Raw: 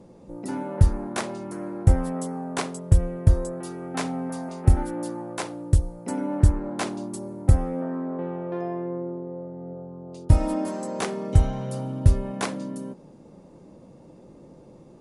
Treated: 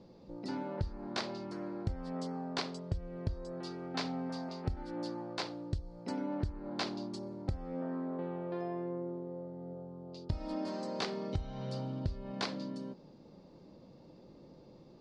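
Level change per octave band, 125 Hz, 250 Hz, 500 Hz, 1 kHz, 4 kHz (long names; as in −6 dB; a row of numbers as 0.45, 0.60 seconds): −17.5, −9.5, −9.5, −9.5, −1.5 decibels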